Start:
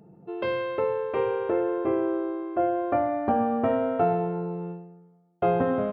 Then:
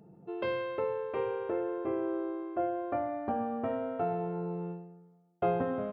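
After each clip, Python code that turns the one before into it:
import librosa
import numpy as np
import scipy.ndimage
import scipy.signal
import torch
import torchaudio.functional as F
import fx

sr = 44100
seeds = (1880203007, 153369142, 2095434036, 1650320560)

y = fx.rider(x, sr, range_db=4, speed_s=0.5)
y = y * 10.0 ** (-7.5 / 20.0)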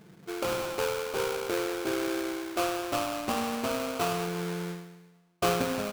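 y = fx.sample_hold(x, sr, seeds[0], rate_hz=1900.0, jitter_pct=20)
y = y * 10.0 ** (2.5 / 20.0)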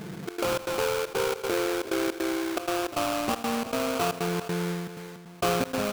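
y = fx.step_gate(x, sr, bpm=157, pattern='xxx.xx.x', floor_db=-24.0, edge_ms=4.5)
y = y + 10.0 ** (-24.0 / 20.0) * np.pad(y, (int(377 * sr / 1000.0), 0))[:len(y)]
y = fx.env_flatten(y, sr, amount_pct=50)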